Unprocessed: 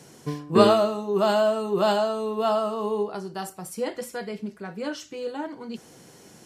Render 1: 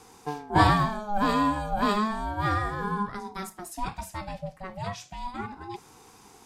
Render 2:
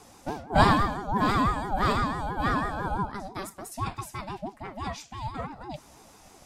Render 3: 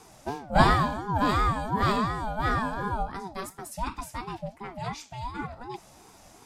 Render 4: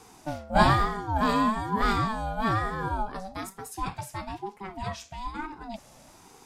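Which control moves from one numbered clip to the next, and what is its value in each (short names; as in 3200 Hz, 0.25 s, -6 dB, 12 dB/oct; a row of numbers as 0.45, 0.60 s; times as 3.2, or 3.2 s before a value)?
ring modulator with a swept carrier, at: 0.33, 6, 2.8, 1.1 Hz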